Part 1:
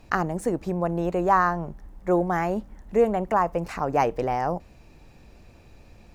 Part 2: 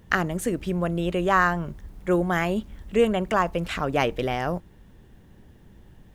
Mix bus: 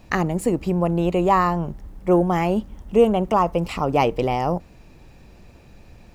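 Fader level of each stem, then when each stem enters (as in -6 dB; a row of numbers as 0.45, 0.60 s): +2.5, -3.0 dB; 0.00, 0.00 s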